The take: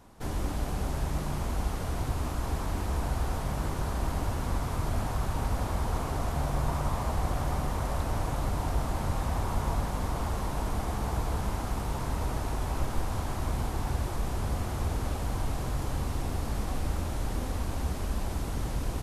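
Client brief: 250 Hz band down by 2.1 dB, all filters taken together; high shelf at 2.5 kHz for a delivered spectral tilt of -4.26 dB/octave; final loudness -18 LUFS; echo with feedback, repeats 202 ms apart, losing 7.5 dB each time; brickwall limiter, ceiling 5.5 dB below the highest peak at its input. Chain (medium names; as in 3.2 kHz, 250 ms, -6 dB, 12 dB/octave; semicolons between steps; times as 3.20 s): peaking EQ 250 Hz -3 dB; treble shelf 2.5 kHz +8.5 dB; peak limiter -20.5 dBFS; feedback delay 202 ms, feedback 42%, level -7.5 dB; trim +13.5 dB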